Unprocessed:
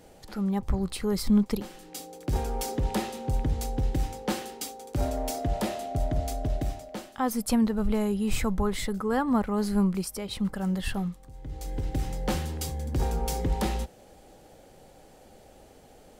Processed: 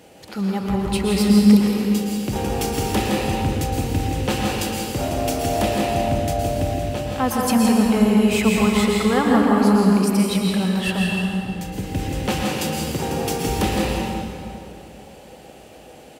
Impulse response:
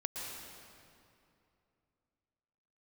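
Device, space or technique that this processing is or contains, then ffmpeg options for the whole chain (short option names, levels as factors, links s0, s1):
PA in a hall: -filter_complex "[0:a]highpass=100,equalizer=f=2700:t=o:w=0.57:g=7,aecho=1:1:165:0.398[s0];[1:a]atrim=start_sample=2205[s1];[s0][s1]afir=irnorm=-1:irlink=0,asettb=1/sr,asplit=3[s2][s3][s4];[s2]atrim=end=12.434[s5];[s3]atrim=start=12.43:end=13.49,asetpts=PTS-STARTPTS,afade=t=in:d=0.004:c=qsin,afade=t=out:st=1.056:d=0.004:c=qsin,highpass=120[s6];[s4]atrim=start=13.486[s7];[s5][s6]acrossfade=d=0.004:c1=hsin:c2=qsin[s8];[s8][s7]acrossfade=d=0.004:c1=qsin:c2=hsin,volume=2.37"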